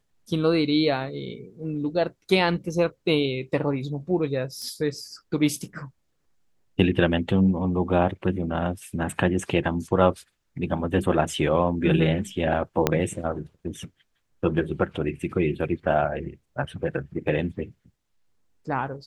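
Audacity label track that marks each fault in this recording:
4.620000	4.620000	pop -25 dBFS
12.870000	12.870000	pop -5 dBFS

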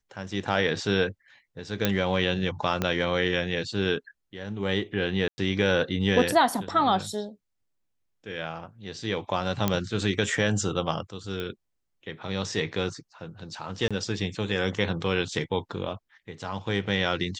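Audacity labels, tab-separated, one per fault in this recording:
1.850000	1.850000	pop -7 dBFS
2.820000	2.820000	pop -11 dBFS
5.280000	5.380000	gap 0.1 s
9.680000	9.680000	pop -9 dBFS
11.400000	11.400000	pop -20 dBFS
13.880000	13.910000	gap 26 ms

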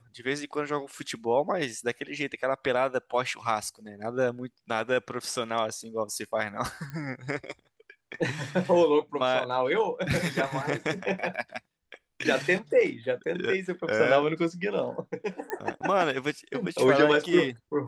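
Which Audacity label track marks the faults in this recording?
6.900000	6.900000	pop -26 dBFS
15.500000	15.500000	pop -18 dBFS

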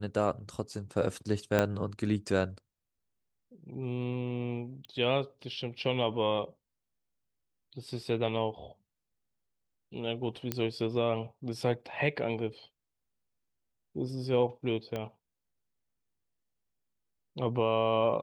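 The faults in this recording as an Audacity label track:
1.590000	1.590000	pop -12 dBFS
4.850000	4.850000	pop -33 dBFS
10.520000	10.520000	pop -15 dBFS
14.960000	14.960000	pop -22 dBFS

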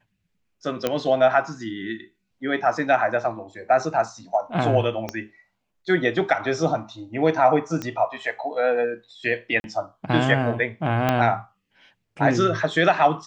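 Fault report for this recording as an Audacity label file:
0.870000	0.870000	pop -8 dBFS
5.090000	5.090000	pop -14 dBFS
7.820000	7.820000	pop -15 dBFS
9.600000	9.640000	gap 41 ms
11.090000	11.090000	pop -7 dBFS

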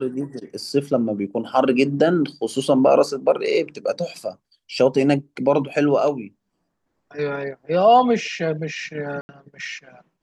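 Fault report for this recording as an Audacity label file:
9.210000	9.290000	gap 80 ms

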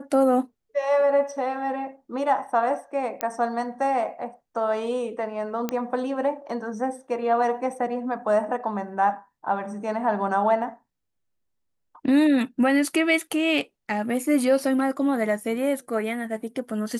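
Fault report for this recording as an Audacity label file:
3.210000	3.210000	pop -10 dBFS
5.690000	5.690000	pop -12 dBFS

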